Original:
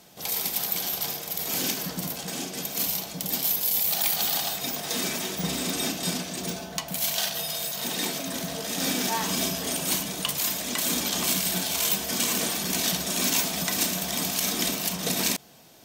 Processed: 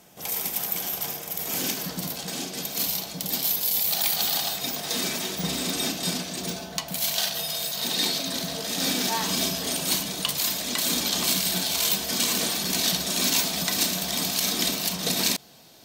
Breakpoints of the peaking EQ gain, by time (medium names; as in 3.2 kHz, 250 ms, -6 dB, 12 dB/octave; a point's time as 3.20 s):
peaking EQ 4.2 kHz 0.55 oct
1.31 s -6 dB
2.07 s +4 dB
7.52 s +4 dB
8.19 s +13 dB
8.59 s +6 dB